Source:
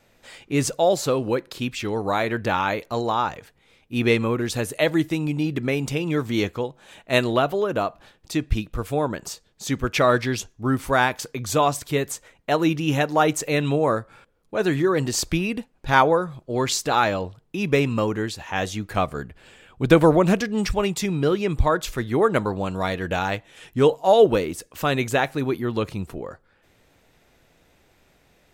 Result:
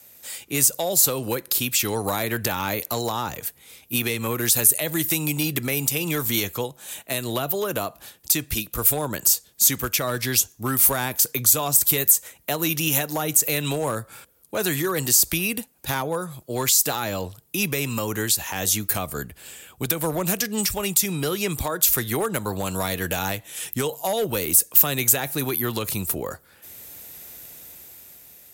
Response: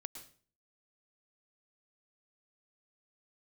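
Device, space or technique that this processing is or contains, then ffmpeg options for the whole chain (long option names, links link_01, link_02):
FM broadcast chain: -filter_complex "[0:a]highpass=frequency=47:width=0.5412,highpass=frequency=47:width=1.3066,dynaudnorm=framelen=320:gausssize=9:maxgain=11.5dB,acrossover=split=190|480[link_01][link_02][link_03];[link_01]acompressor=threshold=-28dB:ratio=4[link_04];[link_02]acompressor=threshold=-30dB:ratio=4[link_05];[link_03]acompressor=threshold=-24dB:ratio=4[link_06];[link_04][link_05][link_06]amix=inputs=3:normalize=0,aemphasis=mode=production:type=50fm,alimiter=limit=-13.5dB:level=0:latency=1:release=136,asoftclip=type=hard:threshold=-16.5dB,lowpass=frequency=15000:width=0.5412,lowpass=frequency=15000:width=1.3066,aemphasis=mode=production:type=50fm,volume=-1dB"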